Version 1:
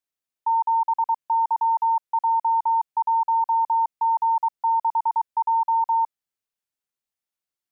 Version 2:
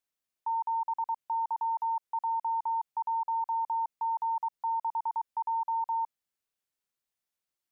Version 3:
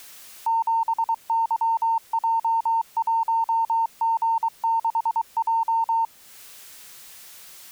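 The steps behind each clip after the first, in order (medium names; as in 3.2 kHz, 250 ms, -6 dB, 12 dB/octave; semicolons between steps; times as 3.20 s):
peak limiter -26.5 dBFS, peak gain reduction 9.5 dB
jump at every zero crossing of -52.5 dBFS; tape noise reduction on one side only encoder only; trim +8 dB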